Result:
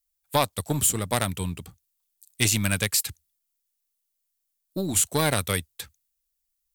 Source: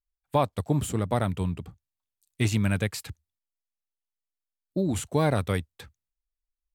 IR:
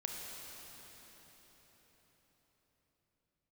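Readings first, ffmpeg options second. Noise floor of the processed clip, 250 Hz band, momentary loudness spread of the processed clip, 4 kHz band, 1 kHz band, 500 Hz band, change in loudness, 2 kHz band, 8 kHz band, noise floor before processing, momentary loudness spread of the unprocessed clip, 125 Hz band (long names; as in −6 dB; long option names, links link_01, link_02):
−79 dBFS, −2.0 dB, 15 LU, +10.0 dB, +1.5 dB, −1.0 dB, +3.0 dB, +6.0 dB, +15.0 dB, below −85 dBFS, 13 LU, −2.0 dB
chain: -af "aeval=exprs='0.299*(cos(1*acos(clip(val(0)/0.299,-1,1)))-cos(1*PI/2))+0.0266*(cos(3*acos(clip(val(0)/0.299,-1,1)))-cos(3*PI/2))+0.0168*(cos(4*acos(clip(val(0)/0.299,-1,1)))-cos(4*PI/2))':channel_layout=same,crystalizer=i=6.5:c=0"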